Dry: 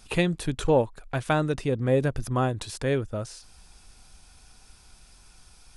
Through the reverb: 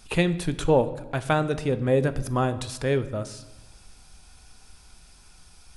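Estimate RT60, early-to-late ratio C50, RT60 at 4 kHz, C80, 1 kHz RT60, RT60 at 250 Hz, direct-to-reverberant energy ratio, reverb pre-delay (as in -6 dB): 1.0 s, 14.5 dB, 0.75 s, 16.5 dB, 1.0 s, 1.3 s, 11.5 dB, 5 ms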